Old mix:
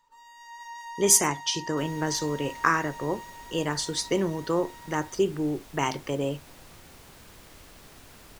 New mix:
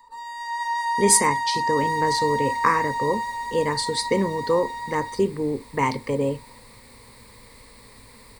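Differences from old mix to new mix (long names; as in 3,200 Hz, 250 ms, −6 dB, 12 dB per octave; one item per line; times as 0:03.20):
speech: add low-shelf EQ 390 Hz +7 dB
first sound +10.5 dB
master: add EQ curve with evenly spaced ripples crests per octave 0.95, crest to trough 13 dB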